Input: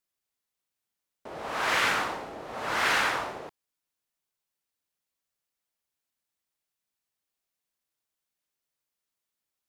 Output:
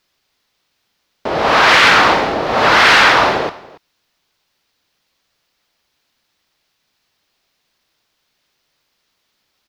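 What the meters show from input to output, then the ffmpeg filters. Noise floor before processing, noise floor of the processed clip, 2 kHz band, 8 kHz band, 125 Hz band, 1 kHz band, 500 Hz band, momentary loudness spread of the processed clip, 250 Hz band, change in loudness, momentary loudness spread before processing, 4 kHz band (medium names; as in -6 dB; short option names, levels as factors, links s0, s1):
under -85 dBFS, -69 dBFS, +17.0 dB, +12.0 dB, +19.0 dB, +18.0 dB, +19.5 dB, 14 LU, +19.0 dB, +17.0 dB, 16 LU, +18.5 dB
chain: -af "highshelf=f=6400:t=q:w=1.5:g=-10,aecho=1:1:282:0.0891,asoftclip=type=tanh:threshold=0.133,alimiter=level_in=14.1:limit=0.891:release=50:level=0:latency=1,volume=0.891"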